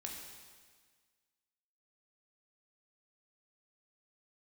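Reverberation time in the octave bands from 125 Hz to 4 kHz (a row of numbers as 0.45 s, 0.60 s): 1.6 s, 1.6 s, 1.6 s, 1.6 s, 1.6 s, 1.6 s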